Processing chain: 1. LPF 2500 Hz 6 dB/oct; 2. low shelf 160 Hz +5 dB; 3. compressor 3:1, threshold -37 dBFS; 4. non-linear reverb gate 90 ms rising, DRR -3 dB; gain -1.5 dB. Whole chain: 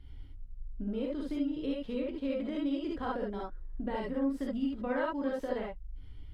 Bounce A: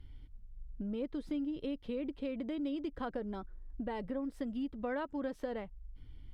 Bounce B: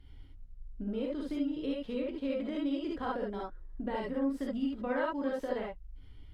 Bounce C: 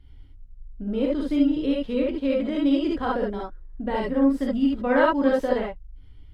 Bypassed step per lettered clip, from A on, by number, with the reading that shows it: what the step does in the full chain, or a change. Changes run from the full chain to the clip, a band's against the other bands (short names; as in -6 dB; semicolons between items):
4, loudness change -4.0 LU; 2, 125 Hz band -2.5 dB; 3, mean gain reduction 7.0 dB